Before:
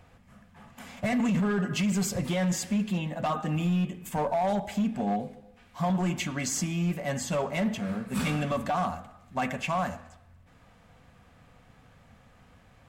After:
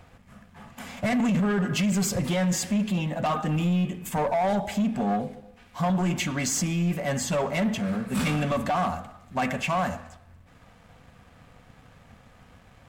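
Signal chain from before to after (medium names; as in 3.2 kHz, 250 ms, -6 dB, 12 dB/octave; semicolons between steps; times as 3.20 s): waveshaping leveller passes 1; trim +1.5 dB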